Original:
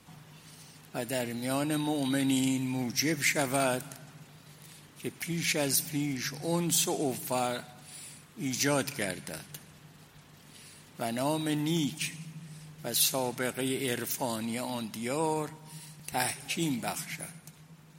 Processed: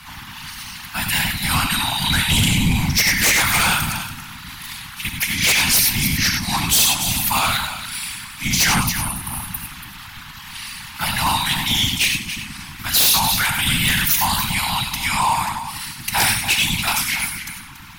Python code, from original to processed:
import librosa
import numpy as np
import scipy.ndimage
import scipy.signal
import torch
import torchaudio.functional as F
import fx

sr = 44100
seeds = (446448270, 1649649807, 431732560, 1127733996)

p1 = scipy.signal.sosfilt(scipy.signal.cheby1(4, 1.0, [130.0, 890.0], 'bandstop', fs=sr, output='sos'), x)
p2 = fx.spec_repair(p1, sr, seeds[0], start_s=8.76, length_s=0.88, low_hz=1300.0, high_hz=8600.0, source='after')
p3 = fx.graphic_eq_10(p2, sr, hz=(125, 250, 500, 8000), db=(-6, 9, -10, -9))
p4 = p3 + fx.echo_single(p3, sr, ms=283, db=-12.5, dry=0)
p5 = fx.rev_gated(p4, sr, seeds[1], gate_ms=120, shape='rising', drr_db=5.0)
p6 = fx.whisperise(p5, sr, seeds[2])
p7 = fx.fold_sine(p6, sr, drive_db=19, ceiling_db=-10.0)
y = fx.dynamic_eq(p7, sr, hz=1500.0, q=1.1, threshold_db=-32.0, ratio=4.0, max_db=-5)